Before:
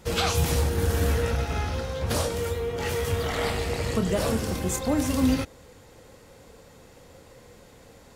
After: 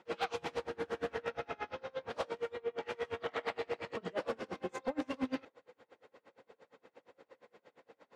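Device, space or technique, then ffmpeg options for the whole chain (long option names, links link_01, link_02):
helicopter radio: -af "highpass=360,lowpass=2600,aeval=exprs='val(0)*pow(10,-30*(0.5-0.5*cos(2*PI*8.6*n/s))/20)':channel_layout=same,asoftclip=type=hard:threshold=-25dB,volume=-2dB"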